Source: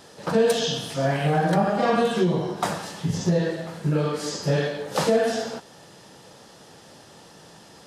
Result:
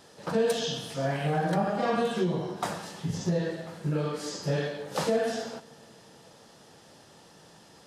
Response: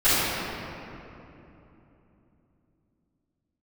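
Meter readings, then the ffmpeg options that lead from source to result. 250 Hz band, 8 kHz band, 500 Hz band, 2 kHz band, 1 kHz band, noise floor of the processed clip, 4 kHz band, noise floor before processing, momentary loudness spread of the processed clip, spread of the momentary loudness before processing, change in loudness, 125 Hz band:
-6.0 dB, -6.0 dB, -6.0 dB, -6.0 dB, -6.0 dB, -55 dBFS, -6.0 dB, -49 dBFS, 8 LU, 8 LU, -6.0 dB, -6.0 dB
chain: -filter_complex "[0:a]asplit=2[s0][s1];[1:a]atrim=start_sample=2205,adelay=70[s2];[s1][s2]afir=irnorm=-1:irlink=0,volume=0.00631[s3];[s0][s3]amix=inputs=2:normalize=0,volume=0.501"

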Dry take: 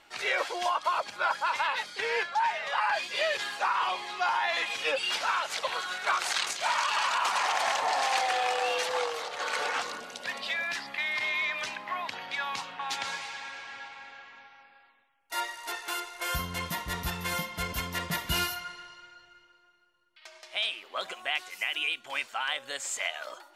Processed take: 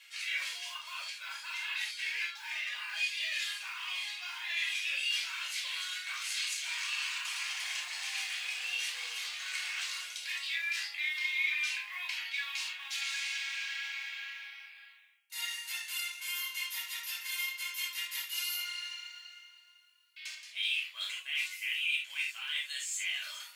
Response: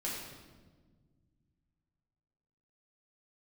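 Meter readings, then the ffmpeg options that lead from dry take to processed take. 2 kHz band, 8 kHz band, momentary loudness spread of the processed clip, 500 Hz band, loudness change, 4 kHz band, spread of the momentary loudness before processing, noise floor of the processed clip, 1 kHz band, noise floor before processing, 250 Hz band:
-3.0 dB, -1.5 dB, 8 LU, under -30 dB, -4.5 dB, -1.0 dB, 10 LU, -57 dBFS, -21.5 dB, -60 dBFS, under -40 dB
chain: -filter_complex "[0:a]highshelf=f=6000:g=11,areverse,acompressor=threshold=0.00891:ratio=4,areverse,acrusher=bits=6:mode=log:mix=0:aa=0.000001,highpass=f=2400:t=q:w=2[s0];[1:a]atrim=start_sample=2205,atrim=end_sample=3969[s1];[s0][s1]afir=irnorm=-1:irlink=0,volume=1.41"

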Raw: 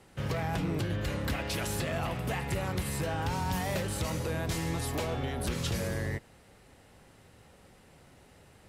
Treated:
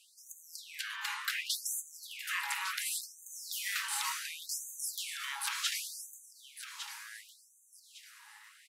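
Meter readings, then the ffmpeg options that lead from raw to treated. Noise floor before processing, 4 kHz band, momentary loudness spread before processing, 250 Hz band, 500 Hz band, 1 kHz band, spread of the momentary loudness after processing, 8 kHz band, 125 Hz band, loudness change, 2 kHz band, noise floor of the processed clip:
-58 dBFS, +3.0 dB, 2 LU, under -40 dB, under -40 dB, -7.0 dB, 18 LU, +4.5 dB, under -40 dB, -3.5 dB, +0.5 dB, -64 dBFS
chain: -af "aecho=1:1:1156|2312|3468:0.316|0.0949|0.0285,afftfilt=real='re*gte(b*sr/1024,780*pow(6200/780,0.5+0.5*sin(2*PI*0.69*pts/sr)))':imag='im*gte(b*sr/1024,780*pow(6200/780,0.5+0.5*sin(2*PI*0.69*pts/sr)))':win_size=1024:overlap=0.75,volume=1.58"

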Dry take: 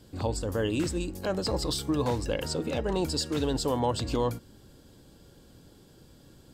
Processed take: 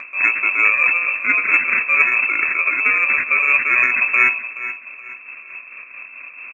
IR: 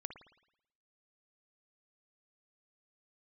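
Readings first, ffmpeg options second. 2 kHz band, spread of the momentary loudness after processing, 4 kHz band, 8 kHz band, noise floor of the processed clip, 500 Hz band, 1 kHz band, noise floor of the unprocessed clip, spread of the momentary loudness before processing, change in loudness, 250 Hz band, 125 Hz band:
+31.0 dB, 20 LU, under -20 dB, under -10 dB, -40 dBFS, -8.5 dB, +9.5 dB, -56 dBFS, 4 LU, +15.0 dB, -10.0 dB, under -20 dB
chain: -filter_complex "[0:a]equalizer=f=1300:w=0.36:g=-4,bandreject=f=50:t=h:w=6,bandreject=f=100:t=h:w=6,bandreject=f=150:t=h:w=6,bandreject=f=200:t=h:w=6,bandreject=f=250:t=h:w=6,bandreject=f=300:t=h:w=6,acrusher=samples=24:mix=1:aa=0.000001,lowpass=f=2300:t=q:w=0.5098,lowpass=f=2300:t=q:w=0.6013,lowpass=f=2300:t=q:w=0.9,lowpass=f=2300:t=q:w=2.563,afreqshift=-2700,acontrast=39,asplit=2[s0][s1];[s1]aecho=0:1:425|850|1275:0.224|0.0672|0.0201[s2];[s0][s2]amix=inputs=2:normalize=0,acompressor=mode=upward:threshold=0.0126:ratio=2.5,tremolo=f=4.5:d=0.49,equalizer=f=100:t=o:w=0.67:g=4,equalizer=f=250:t=o:w=0.67:g=10,equalizer=f=1000:t=o:w=0.67:g=8,crystalizer=i=5:c=0,volume=1.58"

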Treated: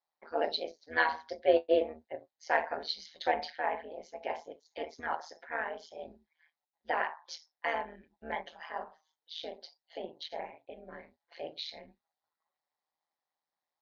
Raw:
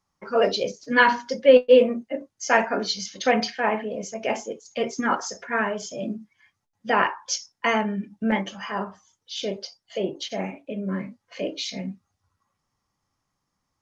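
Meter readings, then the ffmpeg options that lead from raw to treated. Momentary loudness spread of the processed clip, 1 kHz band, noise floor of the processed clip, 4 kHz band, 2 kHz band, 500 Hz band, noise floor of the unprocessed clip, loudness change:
18 LU, -9.5 dB, under -85 dBFS, -10.5 dB, -10.5 dB, -12.0 dB, -79 dBFS, -11.0 dB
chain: -af "highpass=490,equalizer=f=540:t=q:w=4:g=3,equalizer=f=770:t=q:w=4:g=9,equalizer=f=1200:t=q:w=4:g=-7,equalizer=f=1800:t=q:w=4:g=4,equalizer=f=2700:t=q:w=4:g=-5,equalizer=f=4000:t=q:w=4:g=8,lowpass=f=4500:w=0.5412,lowpass=f=4500:w=1.3066,tremolo=f=160:d=0.857,volume=0.376"

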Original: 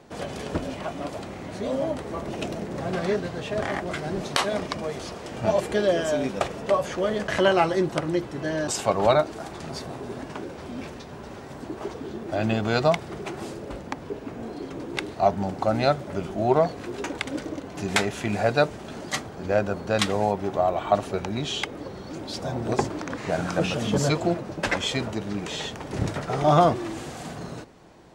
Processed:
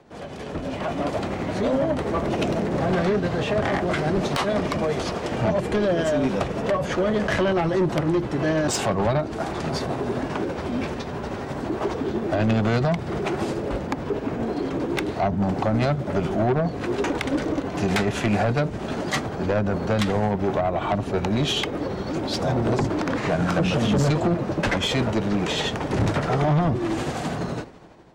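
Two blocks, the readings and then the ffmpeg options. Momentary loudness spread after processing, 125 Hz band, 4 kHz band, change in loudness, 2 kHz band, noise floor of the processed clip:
6 LU, +6.5 dB, +1.5 dB, +2.5 dB, +2.0 dB, -32 dBFS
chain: -filter_complex "[0:a]tremolo=f=12:d=0.36,highshelf=f=5500:g=-9.5,acrossover=split=280[s0][s1];[s1]acompressor=threshold=0.0355:ratio=10[s2];[s0][s2]amix=inputs=2:normalize=0,asoftclip=type=tanh:threshold=0.0422,dynaudnorm=f=300:g=5:m=3.76"

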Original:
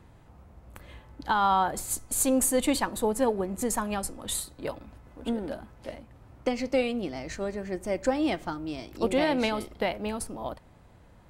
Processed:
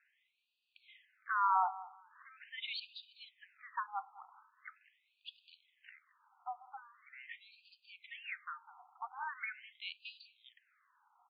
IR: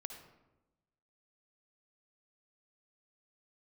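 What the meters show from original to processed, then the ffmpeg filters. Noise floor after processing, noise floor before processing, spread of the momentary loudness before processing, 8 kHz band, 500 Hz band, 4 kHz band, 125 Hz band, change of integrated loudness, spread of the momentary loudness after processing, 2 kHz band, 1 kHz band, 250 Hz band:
-80 dBFS, -55 dBFS, 15 LU, under -40 dB, under -30 dB, -10.5 dB, under -40 dB, -11.0 dB, 23 LU, -8.0 dB, -8.0 dB, under -40 dB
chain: -af "aecho=1:1:202|404:0.112|0.0258,afftfilt=real='re*between(b*sr/1024,980*pow(3500/980,0.5+0.5*sin(2*PI*0.42*pts/sr))/1.41,980*pow(3500/980,0.5+0.5*sin(2*PI*0.42*pts/sr))*1.41)':imag='im*between(b*sr/1024,980*pow(3500/980,0.5+0.5*sin(2*PI*0.42*pts/sr))/1.41,980*pow(3500/980,0.5+0.5*sin(2*PI*0.42*pts/sr))*1.41)':win_size=1024:overlap=0.75,volume=0.596"

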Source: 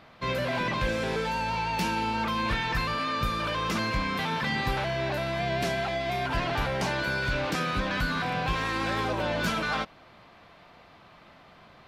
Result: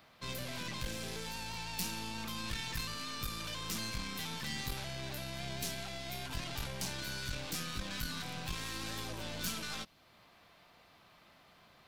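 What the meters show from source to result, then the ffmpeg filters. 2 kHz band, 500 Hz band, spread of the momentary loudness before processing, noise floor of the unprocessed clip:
-14.0 dB, -17.0 dB, 2 LU, -54 dBFS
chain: -filter_complex "[0:a]aeval=exprs='(tanh(17.8*val(0)+0.75)-tanh(0.75))/17.8':c=same,acrossover=split=290|3000[s0][s1][s2];[s1]acompressor=threshold=0.00178:ratio=1.5[s3];[s0][s3][s2]amix=inputs=3:normalize=0,aemphasis=mode=production:type=75kf,volume=0.501"

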